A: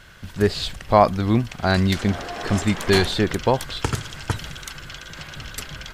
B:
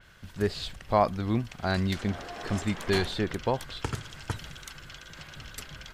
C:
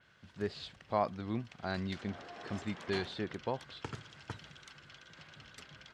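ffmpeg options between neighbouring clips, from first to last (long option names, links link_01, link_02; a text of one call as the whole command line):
ffmpeg -i in.wav -af "adynamicequalizer=threshold=0.0158:dfrequency=4400:dqfactor=0.7:tfrequency=4400:tqfactor=0.7:attack=5:release=100:ratio=0.375:range=2:mode=cutabove:tftype=highshelf,volume=-8.5dB" out.wav
ffmpeg -i in.wav -af "highpass=110,lowpass=5500,volume=-8.5dB" out.wav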